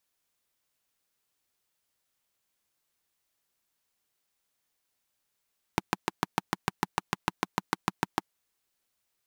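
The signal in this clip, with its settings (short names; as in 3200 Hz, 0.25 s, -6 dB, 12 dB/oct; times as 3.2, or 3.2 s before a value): single-cylinder engine model, steady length 2.45 s, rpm 800, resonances 190/320/880 Hz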